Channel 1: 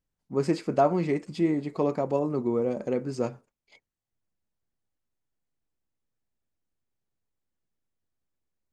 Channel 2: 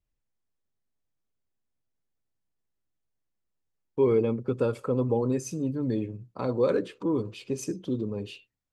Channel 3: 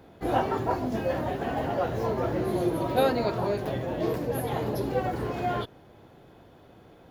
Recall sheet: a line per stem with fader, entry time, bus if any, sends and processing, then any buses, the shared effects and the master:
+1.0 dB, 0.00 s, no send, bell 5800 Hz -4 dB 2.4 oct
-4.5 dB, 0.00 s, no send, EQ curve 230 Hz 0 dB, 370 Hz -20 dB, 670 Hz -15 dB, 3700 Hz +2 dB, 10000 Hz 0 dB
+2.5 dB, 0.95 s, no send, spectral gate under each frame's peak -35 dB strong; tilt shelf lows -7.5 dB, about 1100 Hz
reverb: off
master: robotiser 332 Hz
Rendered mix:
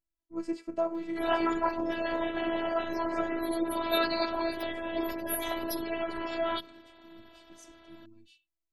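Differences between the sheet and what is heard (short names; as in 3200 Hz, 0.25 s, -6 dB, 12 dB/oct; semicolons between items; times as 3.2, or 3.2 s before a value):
stem 1 +1.0 dB -> -7.0 dB; stem 2 -4.5 dB -> -14.0 dB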